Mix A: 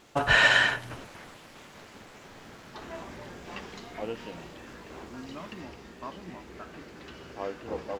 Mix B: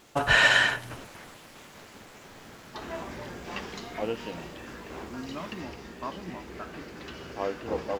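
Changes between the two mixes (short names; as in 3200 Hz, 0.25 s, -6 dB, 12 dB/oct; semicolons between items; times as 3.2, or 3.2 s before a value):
background +4.0 dB; master: add high shelf 9200 Hz +8.5 dB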